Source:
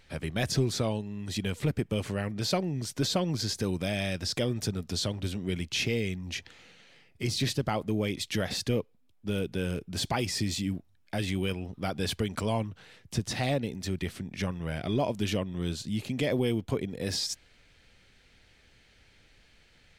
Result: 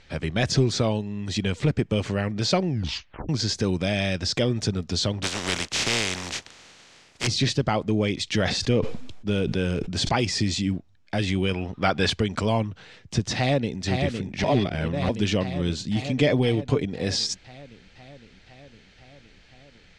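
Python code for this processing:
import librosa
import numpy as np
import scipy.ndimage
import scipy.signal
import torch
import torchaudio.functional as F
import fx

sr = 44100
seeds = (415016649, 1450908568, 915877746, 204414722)

y = fx.spec_flatten(x, sr, power=0.27, at=(5.22, 7.26), fade=0.02)
y = fx.sustainer(y, sr, db_per_s=43.0, at=(8.25, 10.25))
y = fx.peak_eq(y, sr, hz=1500.0, db=8.0, octaves=2.6, at=(11.54, 12.1))
y = fx.echo_throw(y, sr, start_s=13.36, length_s=0.44, ms=510, feedback_pct=75, wet_db=-4.5)
y = fx.comb(y, sr, ms=6.8, depth=0.48, at=(15.96, 16.85))
y = fx.edit(y, sr, fx.tape_stop(start_s=2.68, length_s=0.61),
    fx.reverse_span(start_s=14.44, length_s=0.65), tone=tone)
y = scipy.signal.sosfilt(scipy.signal.butter(4, 7300.0, 'lowpass', fs=sr, output='sos'), y)
y = y * librosa.db_to_amplitude(6.0)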